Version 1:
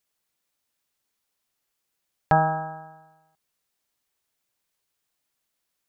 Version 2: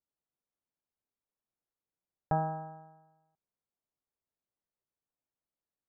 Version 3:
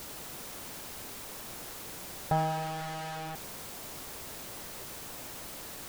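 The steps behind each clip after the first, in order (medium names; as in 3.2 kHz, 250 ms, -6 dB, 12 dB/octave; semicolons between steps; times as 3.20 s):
Bessel low-pass 760 Hz, order 2; trim -8 dB
jump at every zero crossing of -32.5 dBFS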